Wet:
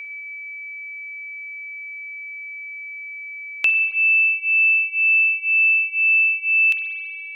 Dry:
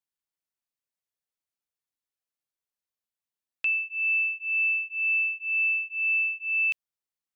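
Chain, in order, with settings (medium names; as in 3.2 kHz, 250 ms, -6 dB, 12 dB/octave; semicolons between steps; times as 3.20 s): whistle 2.3 kHz -48 dBFS; spring tank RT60 1.6 s, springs 44 ms, chirp 25 ms, DRR 5 dB; three bands compressed up and down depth 40%; trim +9 dB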